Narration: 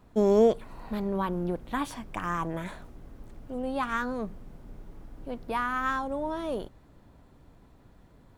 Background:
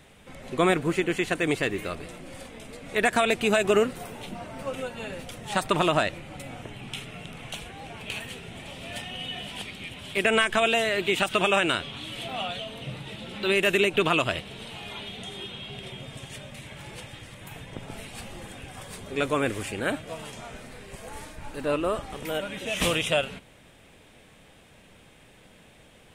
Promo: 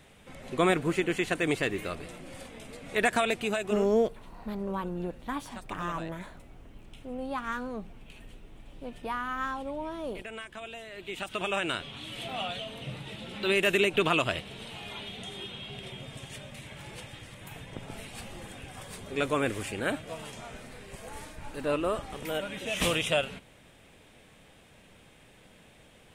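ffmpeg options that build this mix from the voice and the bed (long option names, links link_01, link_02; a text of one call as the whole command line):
ffmpeg -i stem1.wav -i stem2.wav -filter_complex "[0:a]adelay=3550,volume=-4dB[link_01];[1:a]volume=14.5dB,afade=type=out:start_time=3.06:duration=0.88:silence=0.141254,afade=type=in:start_time=10.89:duration=1.41:silence=0.141254[link_02];[link_01][link_02]amix=inputs=2:normalize=0" out.wav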